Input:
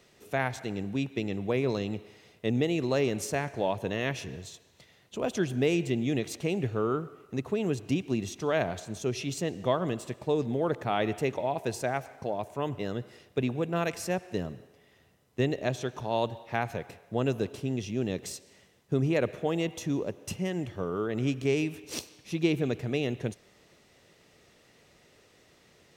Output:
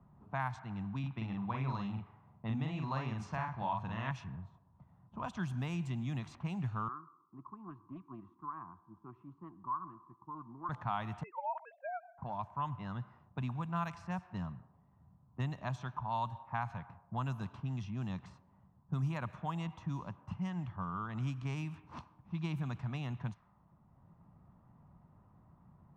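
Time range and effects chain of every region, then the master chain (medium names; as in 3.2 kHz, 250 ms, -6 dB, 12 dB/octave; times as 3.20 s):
0.99–4.11 s: low-pass 3.9 kHz + doubling 45 ms -3 dB
6.88–10.69 s: two resonant band-passes 600 Hz, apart 1.7 oct + loudspeaker Doppler distortion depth 0.11 ms
11.23–12.18 s: formants replaced by sine waves + band-pass filter 800 Hz, Q 0.72
whole clip: level-controlled noise filter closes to 460 Hz, open at -24 dBFS; FFT filter 180 Hz 0 dB, 450 Hz -25 dB, 1 kHz +8 dB, 2 kHz -9 dB; three bands compressed up and down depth 40%; trim -3.5 dB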